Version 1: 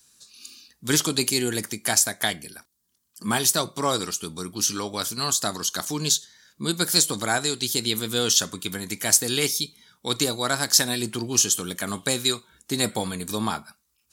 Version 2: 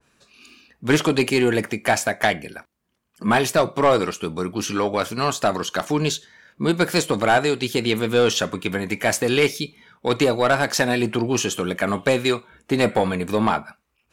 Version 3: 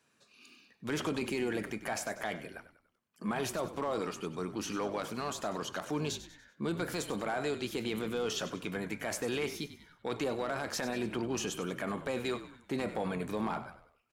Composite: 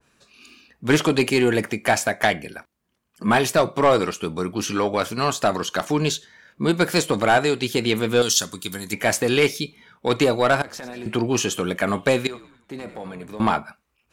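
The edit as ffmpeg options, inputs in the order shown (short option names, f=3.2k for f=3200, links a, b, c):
-filter_complex "[2:a]asplit=2[a][b];[1:a]asplit=4[c][d][e][f];[c]atrim=end=8.222[g];[0:a]atrim=start=8.218:end=8.932[h];[d]atrim=start=8.928:end=10.622[i];[a]atrim=start=10.618:end=11.062[j];[e]atrim=start=11.058:end=12.272[k];[b]atrim=start=12.268:end=13.402[l];[f]atrim=start=13.398[m];[g][h]acrossfade=d=0.004:c1=hsin:c2=hsin[n];[n][i]acrossfade=d=0.004:c1=hsin:c2=hsin[o];[o][j]acrossfade=d=0.004:c1=hsin:c2=hsin[p];[p][k]acrossfade=d=0.004:c1=hsin:c2=hsin[q];[q][l]acrossfade=d=0.004:c1=hsin:c2=hsin[r];[r][m]acrossfade=d=0.004:c1=hsin:c2=hsin"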